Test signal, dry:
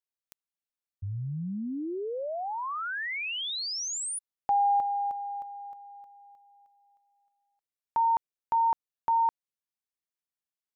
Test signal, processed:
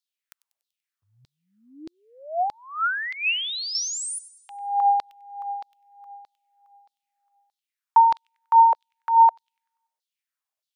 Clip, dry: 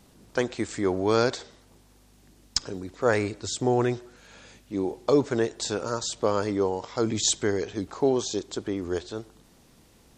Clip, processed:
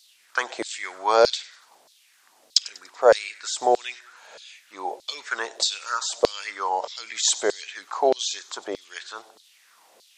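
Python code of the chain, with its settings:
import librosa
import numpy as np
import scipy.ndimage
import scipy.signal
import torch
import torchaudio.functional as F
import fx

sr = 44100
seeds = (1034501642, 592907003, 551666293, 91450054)

y = fx.echo_wet_highpass(x, sr, ms=96, feedback_pct=47, hz=3000.0, wet_db=-15.5)
y = fx.filter_lfo_highpass(y, sr, shape='saw_down', hz=1.6, low_hz=520.0, high_hz=4400.0, q=3.3)
y = F.gain(torch.from_numpy(y), 2.5).numpy()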